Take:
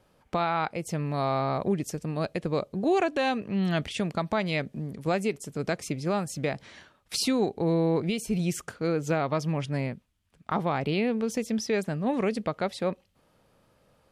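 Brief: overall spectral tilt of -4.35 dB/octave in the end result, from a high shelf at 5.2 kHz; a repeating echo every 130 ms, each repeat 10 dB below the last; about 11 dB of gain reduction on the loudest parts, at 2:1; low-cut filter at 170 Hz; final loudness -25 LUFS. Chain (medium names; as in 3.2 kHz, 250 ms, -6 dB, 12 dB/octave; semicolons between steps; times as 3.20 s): high-pass 170 Hz; treble shelf 5.2 kHz +7 dB; compression 2:1, threshold -42 dBFS; feedback delay 130 ms, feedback 32%, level -10 dB; trim +13.5 dB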